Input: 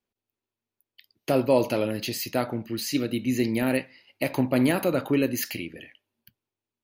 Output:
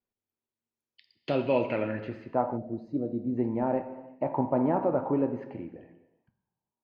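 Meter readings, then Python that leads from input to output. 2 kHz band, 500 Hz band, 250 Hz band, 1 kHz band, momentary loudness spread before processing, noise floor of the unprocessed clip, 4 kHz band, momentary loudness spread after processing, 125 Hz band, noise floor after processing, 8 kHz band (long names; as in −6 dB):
−10.0 dB, −2.5 dB, −4.5 dB, +1.5 dB, 9 LU, below −85 dBFS, below −15 dB, 13 LU, −5.0 dB, below −85 dBFS, below −40 dB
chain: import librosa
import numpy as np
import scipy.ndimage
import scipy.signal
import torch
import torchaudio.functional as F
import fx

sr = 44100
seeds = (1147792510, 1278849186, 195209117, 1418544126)

y = fx.filter_sweep_lowpass(x, sr, from_hz=15000.0, to_hz=910.0, start_s=0.19, end_s=2.43, q=3.7)
y = fx.high_shelf(y, sr, hz=3400.0, db=-11.5)
y = fx.rev_gated(y, sr, seeds[0], gate_ms=440, shape='falling', drr_db=8.5)
y = fx.spec_box(y, sr, start_s=2.57, length_s=0.8, low_hz=750.0, high_hz=3600.0, gain_db=-16)
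y = F.gain(torch.from_numpy(y), -5.0).numpy()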